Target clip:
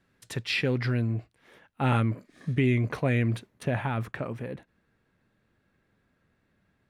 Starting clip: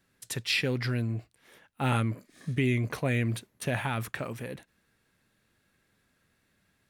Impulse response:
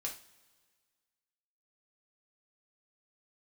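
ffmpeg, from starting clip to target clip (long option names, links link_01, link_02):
-af "asetnsamples=nb_out_samples=441:pad=0,asendcmd='3.63 lowpass f 1200',lowpass=frequency=2400:poles=1,volume=3dB"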